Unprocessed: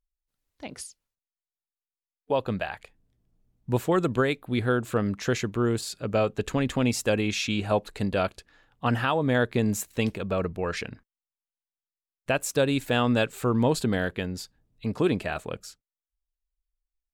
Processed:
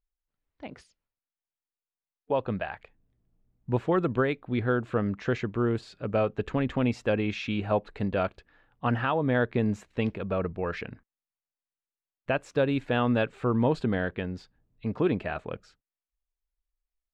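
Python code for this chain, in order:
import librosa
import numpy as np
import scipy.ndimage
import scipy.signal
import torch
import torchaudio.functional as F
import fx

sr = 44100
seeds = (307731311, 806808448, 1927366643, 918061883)

y = scipy.signal.sosfilt(scipy.signal.butter(2, 2500.0, 'lowpass', fs=sr, output='sos'), x)
y = F.gain(torch.from_numpy(y), -1.5).numpy()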